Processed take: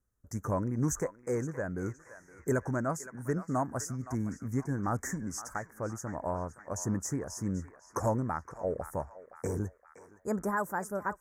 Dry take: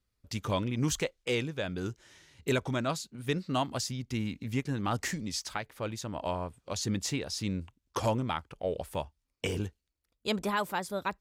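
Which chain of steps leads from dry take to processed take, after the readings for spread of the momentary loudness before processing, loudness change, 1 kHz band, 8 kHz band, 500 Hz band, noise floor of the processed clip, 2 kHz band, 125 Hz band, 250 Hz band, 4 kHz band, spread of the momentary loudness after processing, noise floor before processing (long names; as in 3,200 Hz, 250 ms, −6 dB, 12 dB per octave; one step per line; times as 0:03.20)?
8 LU, −1.0 dB, −0.5 dB, −1.0 dB, −0.5 dB, −62 dBFS, −3.5 dB, 0.0 dB, 0.0 dB, −18.0 dB, 8 LU, −82 dBFS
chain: elliptic band-stop filter 1,700–6,200 Hz, stop band 70 dB
on a send: feedback echo with a band-pass in the loop 517 ms, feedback 62%, band-pass 2,000 Hz, level −10 dB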